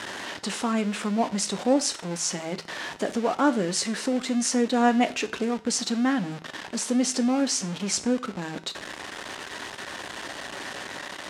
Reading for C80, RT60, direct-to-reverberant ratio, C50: 21.0 dB, 0.45 s, 9.5 dB, 17.0 dB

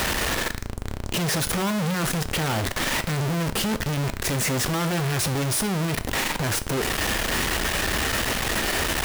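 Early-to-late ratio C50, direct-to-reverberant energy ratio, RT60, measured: 17.0 dB, 12.0 dB, 0.45 s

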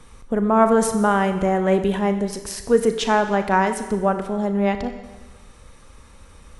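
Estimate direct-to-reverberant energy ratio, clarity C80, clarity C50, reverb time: 8.0 dB, 11.5 dB, 9.5 dB, 1.3 s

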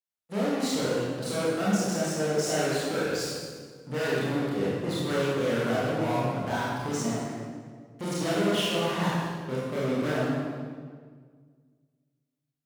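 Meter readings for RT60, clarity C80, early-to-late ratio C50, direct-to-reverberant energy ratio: 1.7 s, 0.0 dB, -3.5 dB, -8.5 dB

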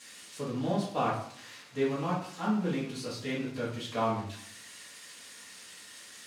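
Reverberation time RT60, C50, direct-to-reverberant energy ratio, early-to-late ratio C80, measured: 0.65 s, 4.0 dB, -9.0 dB, 8.5 dB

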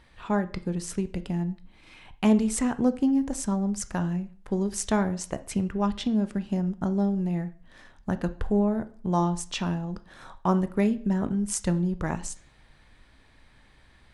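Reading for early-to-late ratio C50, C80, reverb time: 16.5 dB, 21.0 dB, 0.45 s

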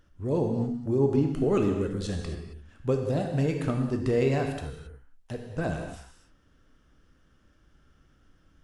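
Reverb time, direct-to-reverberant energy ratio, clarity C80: not exponential, 2.5 dB, 6.0 dB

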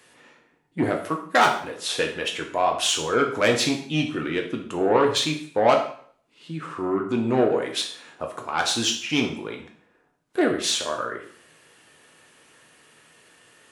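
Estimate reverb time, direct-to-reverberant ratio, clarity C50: 0.55 s, 1.5 dB, 8.0 dB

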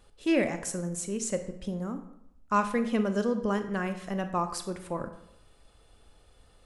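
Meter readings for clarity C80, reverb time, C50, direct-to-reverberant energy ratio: 13.0 dB, 0.75 s, 11.0 dB, 8.5 dB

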